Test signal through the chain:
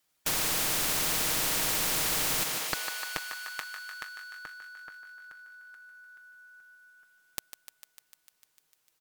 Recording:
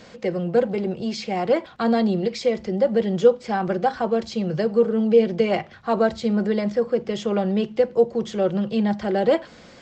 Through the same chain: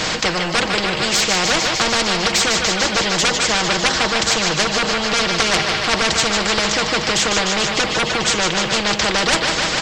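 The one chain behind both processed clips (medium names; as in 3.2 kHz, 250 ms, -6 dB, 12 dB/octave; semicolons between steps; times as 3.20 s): comb 6.4 ms, depth 48%; sine folder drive 13 dB, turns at -2 dBFS; on a send: thinning echo 150 ms, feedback 76%, high-pass 510 Hz, level -10.5 dB; on the sum: spectrum-flattening compressor 4:1; trim -3 dB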